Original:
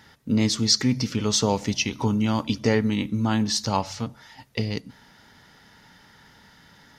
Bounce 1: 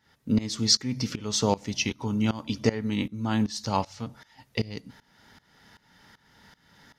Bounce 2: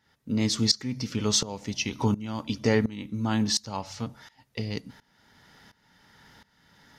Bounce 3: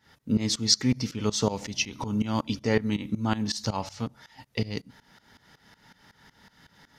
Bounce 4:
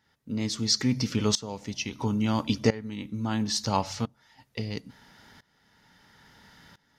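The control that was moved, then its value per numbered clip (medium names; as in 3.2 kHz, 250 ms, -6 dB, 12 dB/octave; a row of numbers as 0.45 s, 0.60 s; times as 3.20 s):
tremolo, rate: 2.6 Hz, 1.4 Hz, 5.4 Hz, 0.74 Hz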